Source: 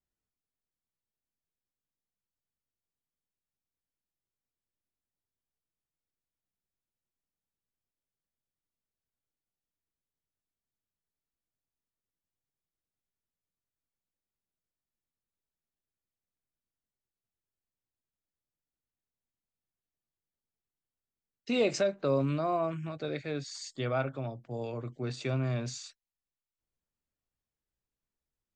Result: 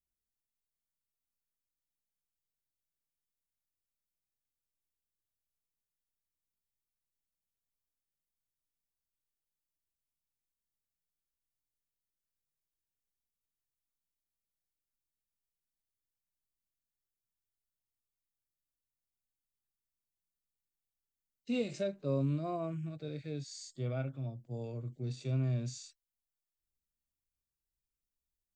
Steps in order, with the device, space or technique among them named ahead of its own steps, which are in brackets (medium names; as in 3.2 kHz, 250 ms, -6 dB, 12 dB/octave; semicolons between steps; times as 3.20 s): smiley-face EQ (bass shelf 130 Hz +4.5 dB; peaking EQ 1.1 kHz -8.5 dB 2.3 oct; treble shelf 6.6 kHz +9 dB); harmonic-percussive split percussive -16 dB; trim -2 dB